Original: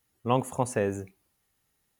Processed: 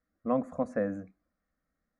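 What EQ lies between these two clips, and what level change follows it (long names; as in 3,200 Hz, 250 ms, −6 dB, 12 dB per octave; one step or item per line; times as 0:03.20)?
head-to-tape spacing loss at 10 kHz 33 dB
phaser with its sweep stopped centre 590 Hz, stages 8
+2.0 dB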